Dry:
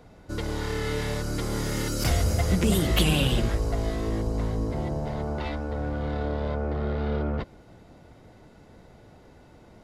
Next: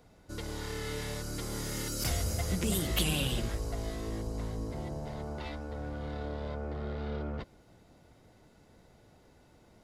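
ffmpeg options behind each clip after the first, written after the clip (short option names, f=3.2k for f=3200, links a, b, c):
-af "highshelf=f=4.1k:g=8.5,volume=-9dB"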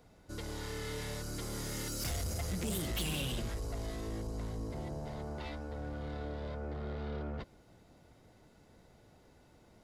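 -af "asoftclip=type=tanh:threshold=-29.5dB,volume=-1.5dB"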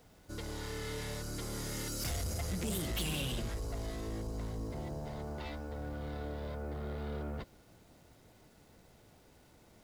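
-af "acrusher=bits=10:mix=0:aa=0.000001"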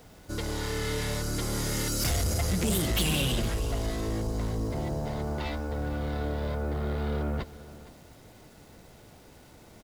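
-af "aecho=1:1:464:0.141,volume=9dB"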